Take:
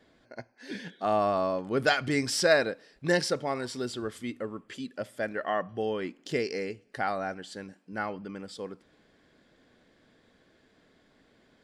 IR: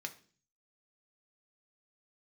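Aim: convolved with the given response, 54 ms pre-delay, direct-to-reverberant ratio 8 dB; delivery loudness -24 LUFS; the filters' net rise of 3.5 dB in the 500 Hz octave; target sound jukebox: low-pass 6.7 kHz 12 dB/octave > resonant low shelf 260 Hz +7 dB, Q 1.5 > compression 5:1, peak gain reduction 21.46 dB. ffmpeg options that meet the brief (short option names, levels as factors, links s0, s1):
-filter_complex "[0:a]equalizer=f=500:t=o:g=6,asplit=2[s0][s1];[1:a]atrim=start_sample=2205,adelay=54[s2];[s1][s2]afir=irnorm=-1:irlink=0,volume=0.447[s3];[s0][s3]amix=inputs=2:normalize=0,lowpass=6700,lowshelf=f=260:t=q:w=1.5:g=7,acompressor=threshold=0.0112:ratio=5,volume=7.94"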